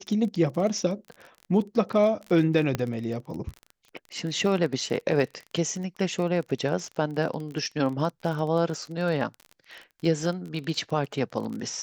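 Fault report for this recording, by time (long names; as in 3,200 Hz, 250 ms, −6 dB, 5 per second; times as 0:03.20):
surface crackle 27 per second −32 dBFS
0:02.75: click −12 dBFS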